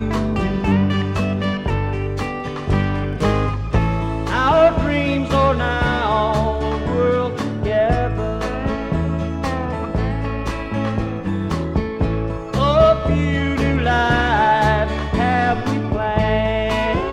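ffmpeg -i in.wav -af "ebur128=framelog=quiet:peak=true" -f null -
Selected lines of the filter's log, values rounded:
Integrated loudness:
  I:         -19.1 LUFS
  Threshold: -29.1 LUFS
Loudness range:
  LRA:         5.6 LU
  Threshold: -39.1 LUFS
  LRA low:   -22.6 LUFS
  LRA high:  -17.0 LUFS
True peak:
  Peak:       -1.8 dBFS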